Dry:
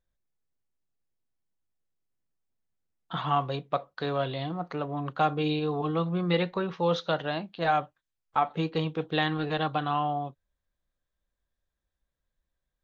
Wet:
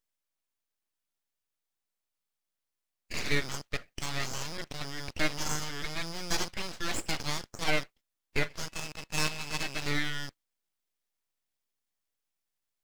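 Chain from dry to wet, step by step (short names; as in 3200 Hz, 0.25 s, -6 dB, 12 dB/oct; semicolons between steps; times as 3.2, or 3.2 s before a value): rattling part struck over -41 dBFS, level -32 dBFS; HPF 860 Hz 12 dB/oct; tilt +4.5 dB/oct; harmonic-percussive split harmonic +4 dB; high shelf 5600 Hz -11.5 dB; 8.68–9.82 ring modulator 1300 Hz; full-wave rectifier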